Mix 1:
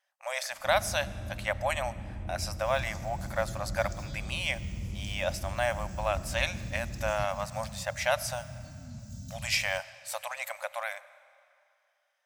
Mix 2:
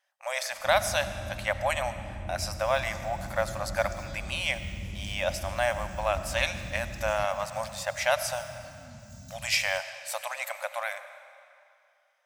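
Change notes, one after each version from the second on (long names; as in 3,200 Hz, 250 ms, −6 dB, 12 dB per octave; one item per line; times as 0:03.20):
speech: send +8.5 dB
second sound: add low-shelf EQ 370 Hz −5.5 dB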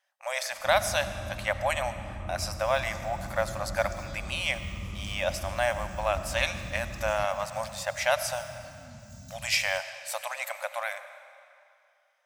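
first sound: add low-pass with resonance 1,200 Hz, resonance Q 13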